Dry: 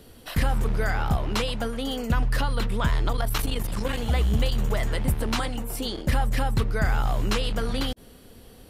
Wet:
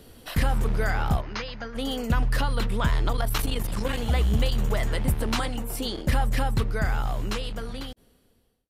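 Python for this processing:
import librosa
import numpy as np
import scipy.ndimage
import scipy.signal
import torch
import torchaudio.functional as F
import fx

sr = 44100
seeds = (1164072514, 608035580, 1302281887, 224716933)

y = fx.fade_out_tail(x, sr, length_s=2.32)
y = fx.cheby_ripple(y, sr, hz=6600.0, ripple_db=9, at=(1.2, 1.74), fade=0.02)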